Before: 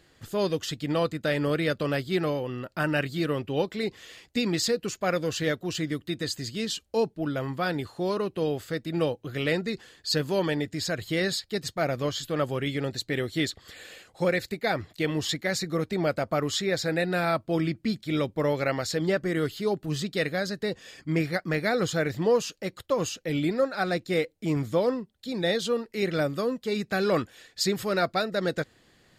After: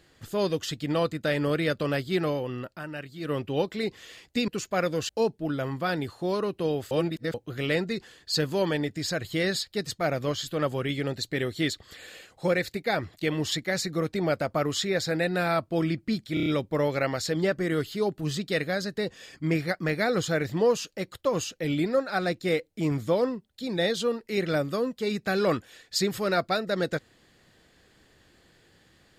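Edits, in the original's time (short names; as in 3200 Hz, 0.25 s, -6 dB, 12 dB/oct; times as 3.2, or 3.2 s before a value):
2.66–3.34 dip -11 dB, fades 0.14 s
4.48–4.78 cut
5.39–6.86 cut
8.68–9.11 reverse
18.11 stutter 0.03 s, 5 plays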